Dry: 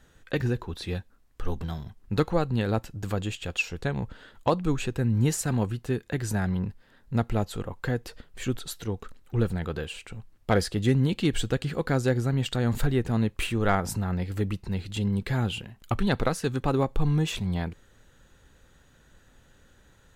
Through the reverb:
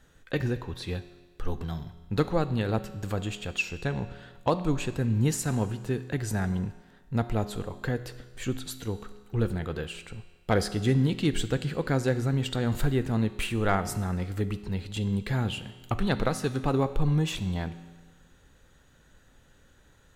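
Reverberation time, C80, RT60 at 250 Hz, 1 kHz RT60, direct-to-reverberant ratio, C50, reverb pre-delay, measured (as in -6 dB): 1.4 s, 15.0 dB, 1.4 s, 1.4 s, 11.5 dB, 13.5 dB, 5 ms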